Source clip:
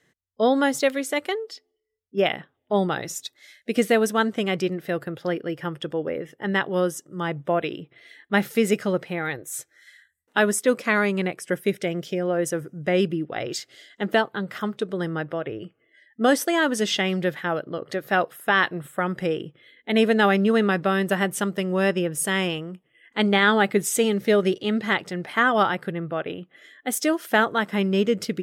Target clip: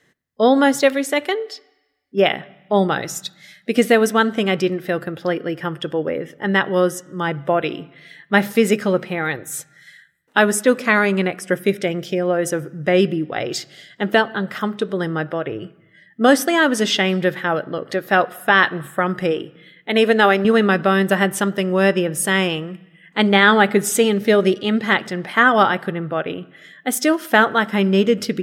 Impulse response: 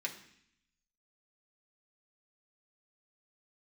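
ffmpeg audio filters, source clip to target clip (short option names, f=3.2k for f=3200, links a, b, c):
-filter_complex "[0:a]asettb=1/sr,asplit=3[a][b][c];[a]atrim=end=19.314[d];[b]atrim=start=19.31:end=20.45,asetpts=PTS-STARTPTS,afade=t=in:d=0.004:c=qsin,afade=t=out:st=1.136:d=0.004:c=qsin,equalizer=f=170:t=o:w=0.5:g=-13[e];[c]atrim=start=20.446[f];[d][e]acrossfade=d=0.004:c1=hsin:c2=qsin[g];[g][f]acrossfade=d=0.004:c1=qsin:c2=hsin,asplit=2[h][i];[i]lowpass=f=6.6k:t=q:w=1.7[j];[1:a]atrim=start_sample=2205,asetrate=31311,aresample=44100,highshelf=f=3.4k:g=-9[k];[j][k]afir=irnorm=-1:irlink=0,volume=-13.5dB[l];[h][l]amix=inputs=2:normalize=0,volume=4.5dB"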